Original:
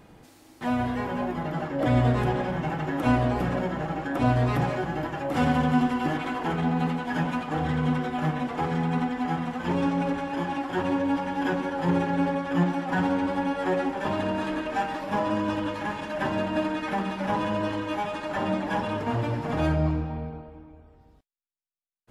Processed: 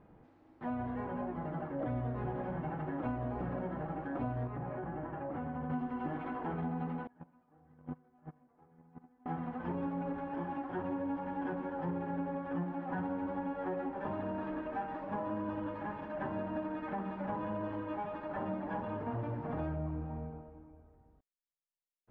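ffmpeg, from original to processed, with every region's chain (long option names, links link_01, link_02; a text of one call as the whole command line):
ffmpeg -i in.wav -filter_complex "[0:a]asettb=1/sr,asplit=3[link_01][link_02][link_03];[link_01]atrim=end=4.474[link_04];[link_02]atrim=start=4.47:end=5.7,asetpts=PTS-STARTPTS,afade=type=in:duration=0.004:curve=qsin,afade=type=out:start_time=1.226:duration=0.004:curve=qsin,lowpass=2400,acompressor=threshold=-27dB:ratio=6:attack=3.2:release=140:knee=1:detection=peak[link_05];[link_03]atrim=start=5.696[link_06];[link_04][link_05]acrossfade=duration=0.004:curve1=hsin:curve2=qsin[link_07];[link_07][link_06]acrossfade=duration=0.004:curve1=qsin:curve2=hsin,asettb=1/sr,asplit=3[link_08][link_09][link_10];[link_08]atrim=end=7.074[link_11];[link_09]atrim=start=7.07:end=9.26,asetpts=PTS-STARTPTS,afade=type=in:duration=0.004:curve=qsin,afade=type=out:start_time=2.186:duration=0.004:curve=qsin,agate=range=-29dB:threshold=-22dB:ratio=16:release=100:detection=peak,highshelf=frequency=3200:gain=-8.5[link_12];[link_10]atrim=start=9.256[link_13];[link_11][link_12]acrossfade=duration=0.004:curve1=hsin:curve2=qsin[link_14];[link_14][link_13]acrossfade=duration=0.004:curve1=qsin:curve2=hsin,lowpass=1400,acompressor=threshold=-25dB:ratio=6,volume=-8dB" out.wav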